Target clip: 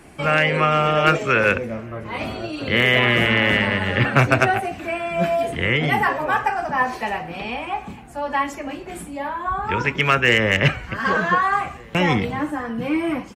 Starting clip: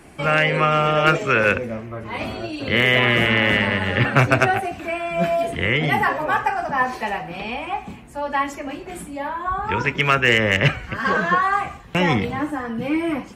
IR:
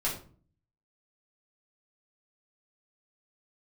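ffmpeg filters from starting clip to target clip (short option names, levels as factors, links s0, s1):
-filter_complex "[0:a]asplit=2[s0][s1];[s1]adelay=1516,volume=0.0631,highshelf=f=4000:g=-34.1[s2];[s0][s2]amix=inputs=2:normalize=0"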